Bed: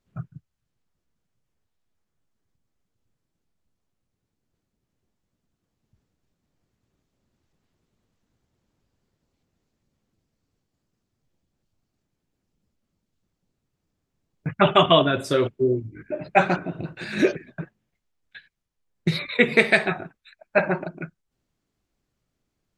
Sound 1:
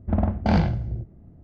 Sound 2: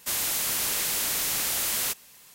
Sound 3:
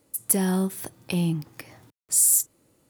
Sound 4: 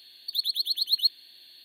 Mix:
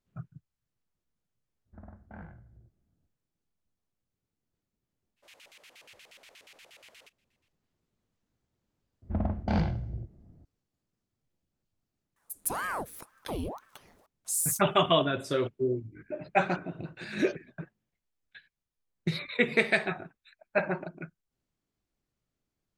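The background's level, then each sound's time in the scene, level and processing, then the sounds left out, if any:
bed -7.5 dB
1.65 s: add 1 -17 dB, fades 0.02 s + four-pole ladder low-pass 1.8 kHz, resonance 60%
5.16 s: add 2 -15 dB, fades 0.02 s + LFO band-pass square 8.4 Hz 560–2500 Hz
9.02 s: add 1 -7.5 dB
12.16 s: add 3 -7.5 dB + ring modulator with a swept carrier 770 Hz, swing 90%, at 2 Hz
not used: 4

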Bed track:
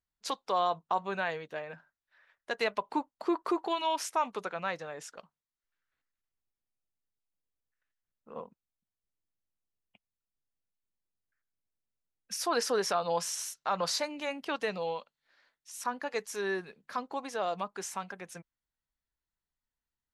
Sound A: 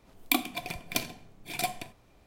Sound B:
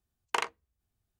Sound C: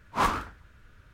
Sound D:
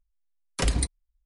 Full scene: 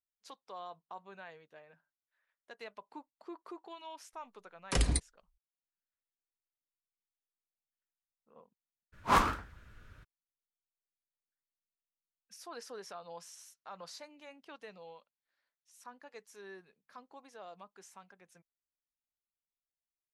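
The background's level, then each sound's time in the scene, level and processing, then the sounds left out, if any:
bed track -17 dB
4.13 s: add D -4.5 dB
8.92 s: add C -1 dB, fades 0.02 s
not used: A, B

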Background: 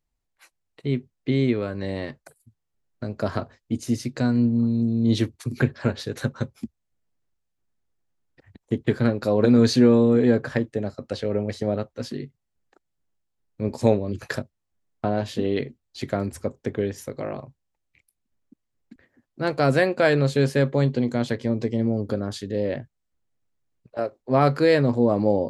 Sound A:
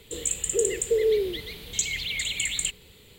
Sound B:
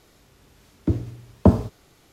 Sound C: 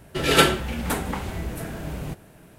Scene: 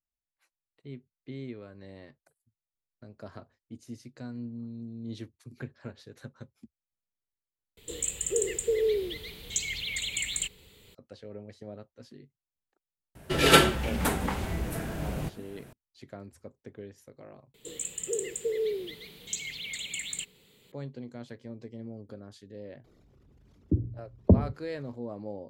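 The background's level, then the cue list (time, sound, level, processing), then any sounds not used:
background -18.5 dB
7.77 s: replace with A -4 dB
13.15 s: add C -1.5 dB
17.54 s: replace with A -8 dB + resonant low shelf 110 Hz -9.5 dB, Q 1.5
22.84 s: add B -4.5 dB + resonances exaggerated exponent 2

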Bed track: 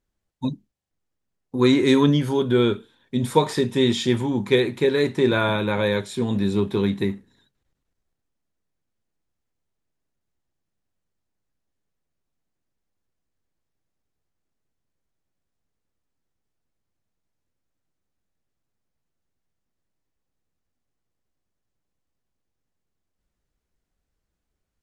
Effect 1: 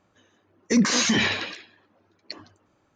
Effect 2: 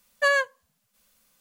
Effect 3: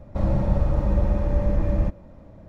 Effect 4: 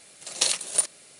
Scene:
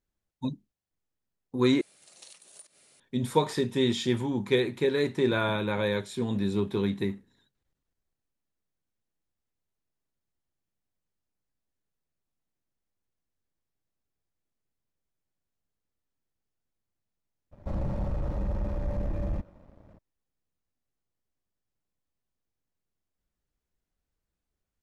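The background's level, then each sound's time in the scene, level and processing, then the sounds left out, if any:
bed track -6 dB
1.81 s: replace with 4 -9.5 dB + compression 2.5:1, threshold -46 dBFS
17.51 s: add 3 -14 dB, fades 0.02 s + waveshaping leveller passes 2
not used: 1, 2

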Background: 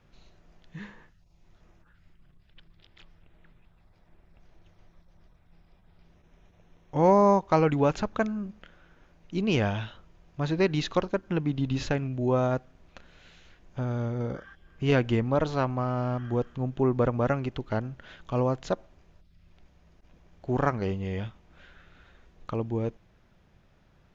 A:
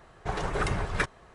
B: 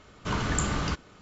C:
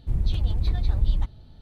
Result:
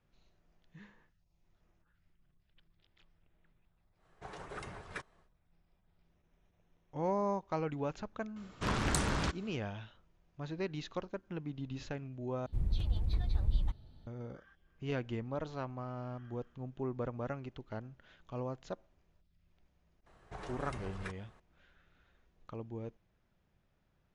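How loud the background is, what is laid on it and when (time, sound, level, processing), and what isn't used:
background -13.5 dB
3.96 s: add A -15 dB, fades 0.10 s + bass shelf 90 Hz -10 dB
8.36 s: add B -4 dB + loudspeaker Doppler distortion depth 0.88 ms
12.46 s: replace with C -9 dB
20.06 s: add A -10 dB + compression 2:1, threshold -34 dBFS

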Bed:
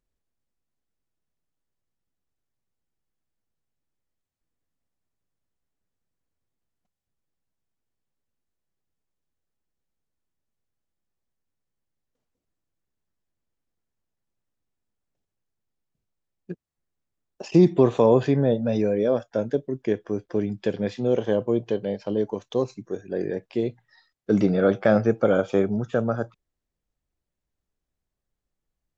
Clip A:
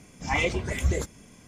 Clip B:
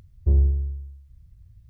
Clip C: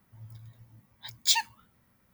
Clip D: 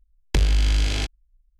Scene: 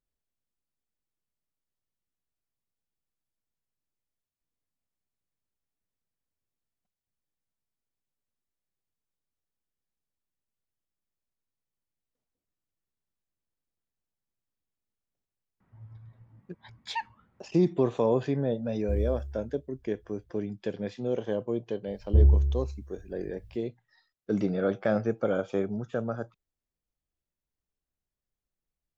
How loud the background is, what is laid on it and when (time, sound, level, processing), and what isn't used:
bed -7.5 dB
15.60 s: add C -0.5 dB + low-pass 1.8 kHz
18.62 s: add B -11.5 dB + short-mantissa float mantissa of 6-bit
21.87 s: add B -0.5 dB
not used: A, D

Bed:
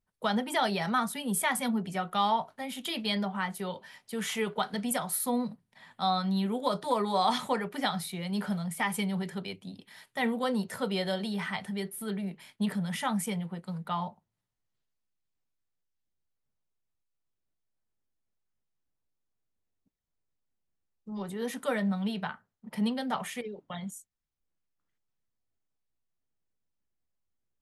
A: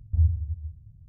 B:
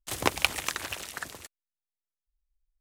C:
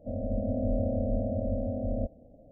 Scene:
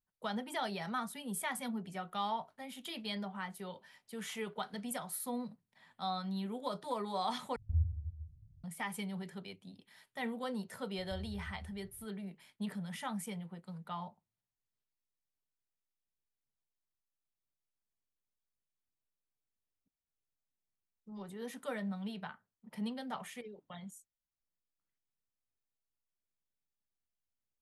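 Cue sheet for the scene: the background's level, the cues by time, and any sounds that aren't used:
bed -9.5 dB
7.56 s: replace with A -10.5 dB
10.98 s: add A -12 dB + compression, threshold -31 dBFS
not used: B, C

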